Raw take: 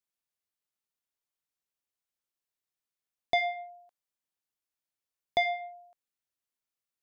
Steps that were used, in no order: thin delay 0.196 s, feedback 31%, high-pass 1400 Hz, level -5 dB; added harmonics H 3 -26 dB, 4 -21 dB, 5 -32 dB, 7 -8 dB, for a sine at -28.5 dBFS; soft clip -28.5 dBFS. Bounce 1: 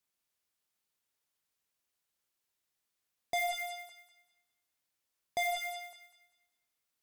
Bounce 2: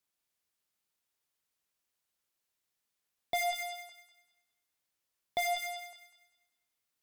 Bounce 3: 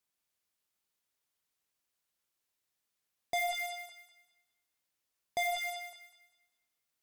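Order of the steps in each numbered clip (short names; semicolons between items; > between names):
added harmonics > soft clip > thin delay; soft clip > added harmonics > thin delay; added harmonics > thin delay > soft clip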